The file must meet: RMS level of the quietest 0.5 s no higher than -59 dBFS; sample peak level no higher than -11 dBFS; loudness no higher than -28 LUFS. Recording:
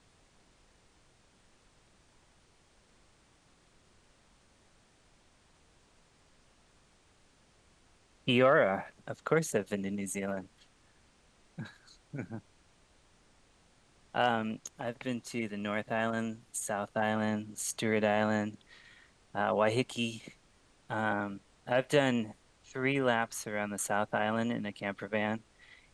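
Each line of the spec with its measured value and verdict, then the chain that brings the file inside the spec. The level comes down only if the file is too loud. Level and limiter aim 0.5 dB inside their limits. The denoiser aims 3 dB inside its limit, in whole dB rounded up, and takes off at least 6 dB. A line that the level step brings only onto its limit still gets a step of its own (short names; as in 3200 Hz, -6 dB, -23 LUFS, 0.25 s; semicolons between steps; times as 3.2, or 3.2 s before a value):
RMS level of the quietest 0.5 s -65 dBFS: OK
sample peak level -12.5 dBFS: OK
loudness -32.5 LUFS: OK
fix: none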